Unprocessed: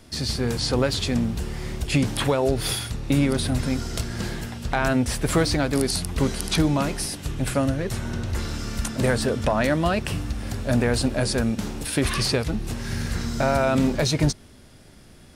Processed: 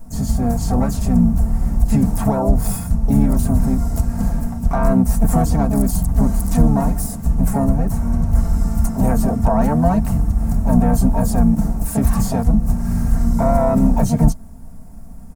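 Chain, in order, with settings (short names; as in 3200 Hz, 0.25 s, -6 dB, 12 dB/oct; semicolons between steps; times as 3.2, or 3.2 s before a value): harmoniser -5 st -6 dB, +7 st -6 dB; low shelf 64 Hz +8.5 dB; comb 4.4 ms, depth 56%; in parallel at -2.5 dB: limiter -12 dBFS, peak gain reduction 8.5 dB; on the sum: EQ curve 210 Hz 0 dB, 410 Hz -15 dB, 730 Hz -1 dB, 3400 Hz -29 dB, 6900 Hz -11 dB, 15000 Hz -3 dB; gain +2 dB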